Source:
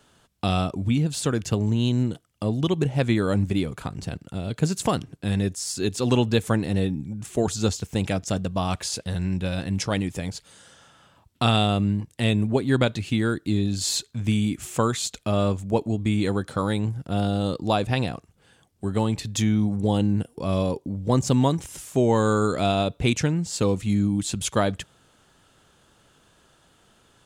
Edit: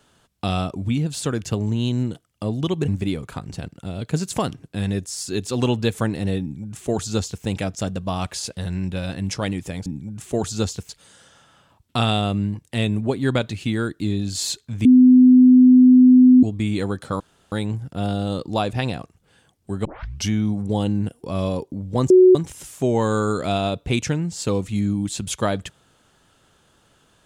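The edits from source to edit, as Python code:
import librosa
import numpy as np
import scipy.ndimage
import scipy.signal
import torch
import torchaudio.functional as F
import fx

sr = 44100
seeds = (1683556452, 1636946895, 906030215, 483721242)

y = fx.edit(x, sr, fx.cut(start_s=2.88, length_s=0.49),
    fx.duplicate(start_s=6.9, length_s=1.03, to_s=10.35),
    fx.bleep(start_s=14.31, length_s=1.58, hz=253.0, db=-7.0),
    fx.insert_room_tone(at_s=16.66, length_s=0.32),
    fx.tape_start(start_s=18.99, length_s=0.45),
    fx.bleep(start_s=21.24, length_s=0.25, hz=369.0, db=-7.0), tone=tone)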